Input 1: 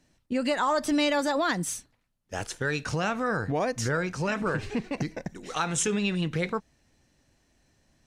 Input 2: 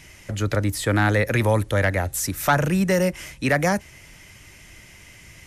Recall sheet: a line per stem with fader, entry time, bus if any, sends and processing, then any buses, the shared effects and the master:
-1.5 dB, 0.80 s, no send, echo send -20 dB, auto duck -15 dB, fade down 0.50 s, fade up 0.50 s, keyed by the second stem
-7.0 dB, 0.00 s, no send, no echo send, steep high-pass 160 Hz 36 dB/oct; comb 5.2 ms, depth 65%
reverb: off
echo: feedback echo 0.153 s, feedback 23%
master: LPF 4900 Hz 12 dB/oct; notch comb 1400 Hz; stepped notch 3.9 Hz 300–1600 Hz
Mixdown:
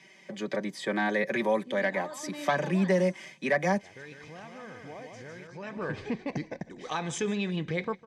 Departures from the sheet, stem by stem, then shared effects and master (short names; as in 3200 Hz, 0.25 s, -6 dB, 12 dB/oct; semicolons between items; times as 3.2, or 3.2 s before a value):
stem 1: entry 0.80 s -> 1.35 s; master: missing stepped notch 3.9 Hz 300–1600 Hz